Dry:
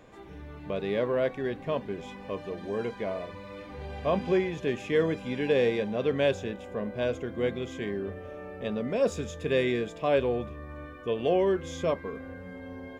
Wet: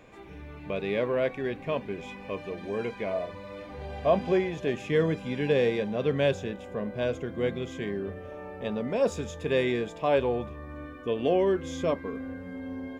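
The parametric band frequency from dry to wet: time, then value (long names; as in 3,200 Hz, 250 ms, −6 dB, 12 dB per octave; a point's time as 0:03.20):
parametric band +7.5 dB 0.3 octaves
2,400 Hz
from 0:03.13 660 Hz
from 0:04.74 150 Hz
from 0:08.32 880 Hz
from 0:10.66 270 Hz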